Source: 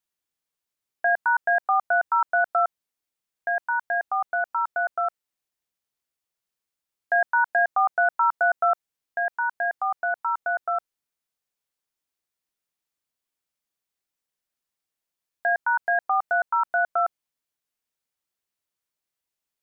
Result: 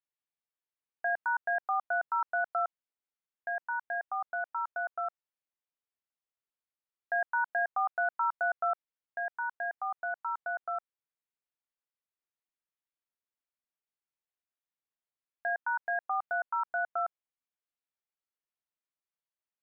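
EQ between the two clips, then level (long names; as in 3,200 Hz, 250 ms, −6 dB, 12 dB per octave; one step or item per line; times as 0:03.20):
high-frequency loss of the air 330 metres
low-shelf EQ 460 Hz −7 dB
−6.0 dB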